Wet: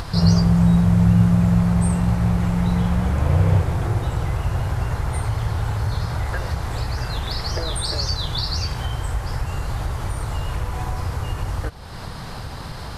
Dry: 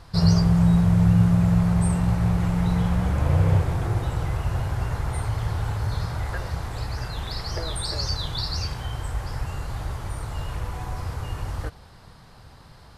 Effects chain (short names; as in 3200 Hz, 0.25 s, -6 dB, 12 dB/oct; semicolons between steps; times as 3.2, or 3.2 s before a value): upward compressor, threshold -21 dBFS; gain +2.5 dB